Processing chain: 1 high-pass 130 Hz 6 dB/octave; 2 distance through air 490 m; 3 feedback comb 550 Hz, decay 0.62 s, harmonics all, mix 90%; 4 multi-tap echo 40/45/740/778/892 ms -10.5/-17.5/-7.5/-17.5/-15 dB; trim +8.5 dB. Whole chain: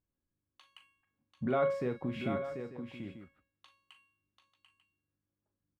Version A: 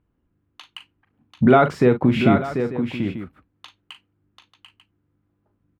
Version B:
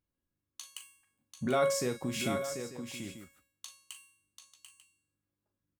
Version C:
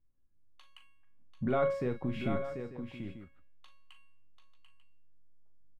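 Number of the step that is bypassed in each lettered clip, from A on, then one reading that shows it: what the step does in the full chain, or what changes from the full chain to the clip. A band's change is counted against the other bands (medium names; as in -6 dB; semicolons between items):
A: 3, 500 Hz band -3.5 dB; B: 2, 4 kHz band +11.0 dB; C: 1, 125 Hz band +3.0 dB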